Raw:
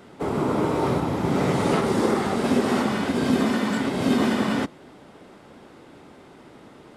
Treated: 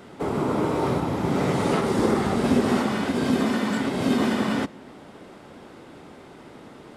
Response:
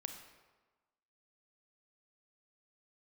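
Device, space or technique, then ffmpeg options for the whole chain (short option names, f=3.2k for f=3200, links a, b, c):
ducked reverb: -filter_complex "[0:a]asplit=3[a][b][c];[1:a]atrim=start_sample=2205[d];[b][d]afir=irnorm=-1:irlink=0[e];[c]apad=whole_len=307104[f];[e][f]sidechaincompress=threshold=-33dB:ratio=8:attack=16:release=390,volume=-0.5dB[g];[a][g]amix=inputs=2:normalize=0,asettb=1/sr,asplit=3[h][i][j];[h]atrim=end=1.994[k];[i]atrim=start=1.99:end=2.77,asetpts=PTS-STARTPTS,afade=t=in:d=0.004:c=qsin,afade=t=out:st=0.776:d=0.004:c=qsin,lowshelf=f=130:g=10[l];[j]atrim=start=2.766[m];[k][l]acrossfade=d=0.004:c1=hsin:c2=qsin[n];[n][m]acrossfade=d=0.004:c1=qsin:c2=hsin,volume=-2dB"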